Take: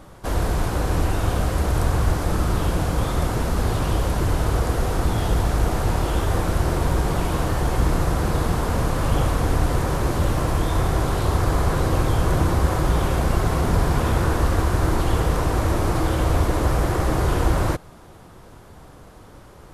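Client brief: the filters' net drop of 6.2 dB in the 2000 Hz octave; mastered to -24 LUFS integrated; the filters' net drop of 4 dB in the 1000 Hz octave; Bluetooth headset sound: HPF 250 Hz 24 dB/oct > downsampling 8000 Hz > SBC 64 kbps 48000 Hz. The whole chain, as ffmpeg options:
-af "highpass=f=250:w=0.5412,highpass=f=250:w=1.3066,equalizer=f=1k:t=o:g=-3.5,equalizer=f=2k:t=o:g=-7,aresample=8000,aresample=44100,volume=5.5dB" -ar 48000 -c:a sbc -b:a 64k

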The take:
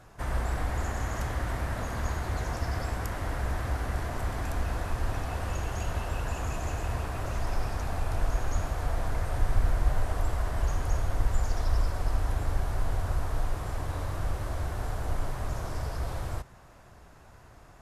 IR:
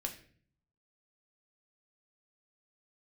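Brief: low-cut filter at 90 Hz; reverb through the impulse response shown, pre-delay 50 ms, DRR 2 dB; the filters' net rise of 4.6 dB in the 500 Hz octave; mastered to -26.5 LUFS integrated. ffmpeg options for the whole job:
-filter_complex "[0:a]highpass=90,equalizer=f=500:t=o:g=6,asplit=2[a][b];[1:a]atrim=start_sample=2205,adelay=50[c];[b][c]afir=irnorm=-1:irlink=0,volume=-2dB[d];[a][d]amix=inputs=2:normalize=0,volume=6dB"

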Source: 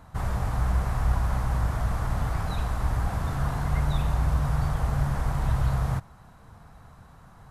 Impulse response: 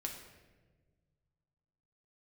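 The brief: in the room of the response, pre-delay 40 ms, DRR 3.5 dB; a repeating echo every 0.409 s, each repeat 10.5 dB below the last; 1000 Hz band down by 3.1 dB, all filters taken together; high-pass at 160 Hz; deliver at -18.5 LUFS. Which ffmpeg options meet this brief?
-filter_complex "[0:a]highpass=160,equalizer=f=1k:t=o:g=-4,aecho=1:1:409|818|1227:0.299|0.0896|0.0269,asplit=2[a][b];[1:a]atrim=start_sample=2205,adelay=40[c];[b][c]afir=irnorm=-1:irlink=0,volume=-2.5dB[d];[a][d]amix=inputs=2:normalize=0,volume=14.5dB"

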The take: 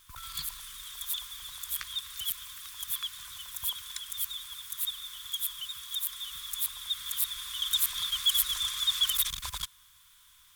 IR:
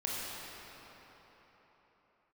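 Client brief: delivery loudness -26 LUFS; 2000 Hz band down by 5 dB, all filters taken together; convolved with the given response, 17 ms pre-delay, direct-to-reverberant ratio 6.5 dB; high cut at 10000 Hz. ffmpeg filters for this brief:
-filter_complex "[0:a]lowpass=10k,equalizer=f=2k:t=o:g=-6.5,asplit=2[a][b];[1:a]atrim=start_sample=2205,adelay=17[c];[b][c]afir=irnorm=-1:irlink=0,volume=-12dB[d];[a][d]amix=inputs=2:normalize=0,volume=8dB"

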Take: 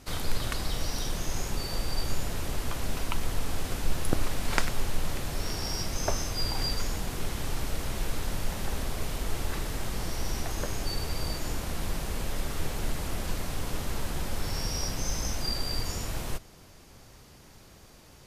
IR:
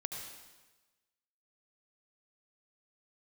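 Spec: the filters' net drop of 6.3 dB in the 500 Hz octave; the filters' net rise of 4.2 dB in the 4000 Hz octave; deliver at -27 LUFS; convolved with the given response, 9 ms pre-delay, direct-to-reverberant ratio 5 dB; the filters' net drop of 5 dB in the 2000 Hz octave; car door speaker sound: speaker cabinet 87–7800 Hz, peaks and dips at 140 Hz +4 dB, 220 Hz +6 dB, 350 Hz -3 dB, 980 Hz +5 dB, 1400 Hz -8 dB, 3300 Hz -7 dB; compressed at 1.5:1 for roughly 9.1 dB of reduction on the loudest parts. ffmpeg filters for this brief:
-filter_complex "[0:a]equalizer=f=500:t=o:g=-7.5,equalizer=f=2k:t=o:g=-5.5,equalizer=f=4k:t=o:g=8.5,acompressor=threshold=-45dB:ratio=1.5,asplit=2[a][b];[1:a]atrim=start_sample=2205,adelay=9[c];[b][c]afir=irnorm=-1:irlink=0,volume=-5dB[d];[a][d]amix=inputs=2:normalize=0,highpass=87,equalizer=f=140:t=q:w=4:g=4,equalizer=f=220:t=q:w=4:g=6,equalizer=f=350:t=q:w=4:g=-3,equalizer=f=980:t=q:w=4:g=5,equalizer=f=1.4k:t=q:w=4:g=-8,equalizer=f=3.3k:t=q:w=4:g=-7,lowpass=f=7.8k:w=0.5412,lowpass=f=7.8k:w=1.3066,volume=12dB"

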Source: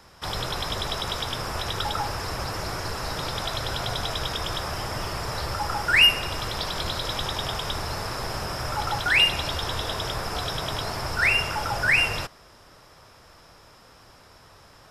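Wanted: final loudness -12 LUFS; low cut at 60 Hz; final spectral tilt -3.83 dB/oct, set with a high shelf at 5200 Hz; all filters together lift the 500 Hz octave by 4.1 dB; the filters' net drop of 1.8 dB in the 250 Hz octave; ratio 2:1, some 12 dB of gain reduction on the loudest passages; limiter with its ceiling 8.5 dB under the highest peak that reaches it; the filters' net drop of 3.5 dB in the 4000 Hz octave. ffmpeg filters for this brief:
-af "highpass=60,equalizer=f=250:t=o:g=-5.5,equalizer=f=500:t=o:g=6.5,equalizer=f=4k:t=o:g=-3.5,highshelf=f=5.2k:g=-5.5,acompressor=threshold=-38dB:ratio=2,volume=25dB,alimiter=limit=-3dB:level=0:latency=1"

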